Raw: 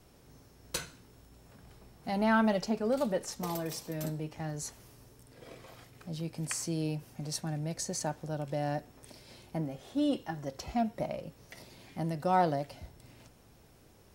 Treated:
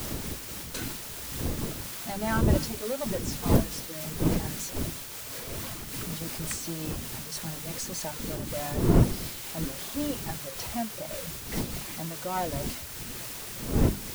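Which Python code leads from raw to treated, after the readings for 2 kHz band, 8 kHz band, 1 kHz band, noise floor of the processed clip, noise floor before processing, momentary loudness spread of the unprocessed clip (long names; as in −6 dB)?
+2.5 dB, +7.0 dB, −2.0 dB, −40 dBFS, −60 dBFS, 23 LU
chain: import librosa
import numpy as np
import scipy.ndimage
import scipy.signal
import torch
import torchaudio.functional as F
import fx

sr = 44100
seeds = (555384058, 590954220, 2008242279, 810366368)

y = x + 0.5 * 10.0 ** (-32.5 / 20.0) * np.sign(x)
y = fx.dmg_wind(y, sr, seeds[0], corner_hz=240.0, level_db=-26.0)
y = fx.dereverb_blind(y, sr, rt60_s=1.4)
y = fx.hum_notches(y, sr, base_hz=50, count=6)
y = y + 10.0 ** (-22.0 / 20.0) * np.pad(y, (int(242 * sr / 1000.0), 0))[:len(y)]
y = fx.quant_dither(y, sr, seeds[1], bits=6, dither='triangular')
y = fx.notch(y, sr, hz=750.0, q=25.0)
y = fx.am_noise(y, sr, seeds[2], hz=5.7, depth_pct=60)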